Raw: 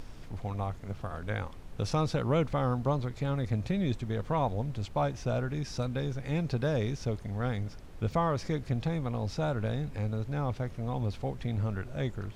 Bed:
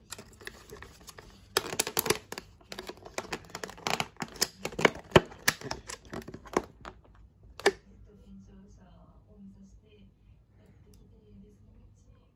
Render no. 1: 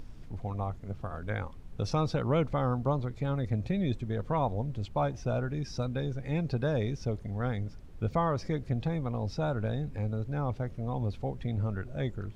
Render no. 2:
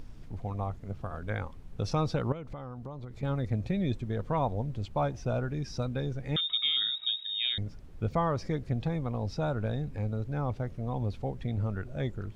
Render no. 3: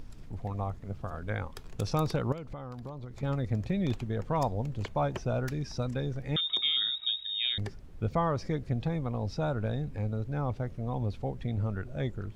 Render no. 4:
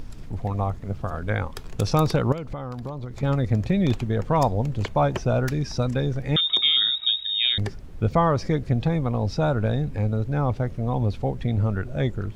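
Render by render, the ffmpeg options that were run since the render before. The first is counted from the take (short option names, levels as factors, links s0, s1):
-af "afftdn=nr=8:nf=-45"
-filter_complex "[0:a]asettb=1/sr,asplit=3[s0][s1][s2];[s0]atrim=end=2.324[s3];[s1]atrim=start=2.32:end=3.23,asetpts=PTS-STARTPTS,afade=t=in:d=0.004:c=qsin,afade=t=out:st=0.906:d=0.004:c=qsin,acompressor=threshold=0.0141:ratio=6:attack=3.2:release=140:knee=1:detection=peak[s4];[s2]atrim=start=3.226[s5];[s3][s4]acrossfade=d=0.004:c1=hsin:c2=qsin[s6];[s6][s5]acrossfade=d=0.004:c1=qsin:c2=hsin,asettb=1/sr,asplit=3[s7][s8][s9];[s7]atrim=end=6.364[s10];[s8]atrim=start=6.36:end=7.58,asetpts=PTS-STARTPTS,afade=t=in:d=0.004:c=qsin,afade=t=out:st=1.216:d=0.004:c=qsin,lowpass=f=3200:t=q:w=0.5098,lowpass=f=3200:t=q:w=0.6013,lowpass=f=3200:t=q:w=0.9,lowpass=f=3200:t=q:w=2.563,afreqshift=-3800[s11];[s9]atrim=start=7.576[s12];[s10][s11]acrossfade=d=0.004:c1=hsin:c2=qsin[s13];[s13][s12]acrossfade=d=0.004:c1=qsin:c2=hsin"
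-filter_complex "[1:a]volume=0.0944[s0];[0:a][s0]amix=inputs=2:normalize=0"
-af "volume=2.66"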